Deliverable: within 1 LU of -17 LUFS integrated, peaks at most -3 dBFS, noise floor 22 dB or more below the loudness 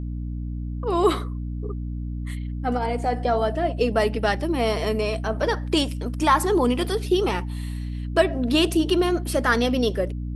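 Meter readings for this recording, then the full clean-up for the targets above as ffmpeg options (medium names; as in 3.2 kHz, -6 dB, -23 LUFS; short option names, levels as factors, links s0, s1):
hum 60 Hz; highest harmonic 300 Hz; hum level -27 dBFS; loudness -23.5 LUFS; peak level -6.0 dBFS; loudness target -17.0 LUFS
-> -af "bandreject=f=60:t=h:w=4,bandreject=f=120:t=h:w=4,bandreject=f=180:t=h:w=4,bandreject=f=240:t=h:w=4,bandreject=f=300:t=h:w=4"
-af "volume=2.11,alimiter=limit=0.708:level=0:latency=1"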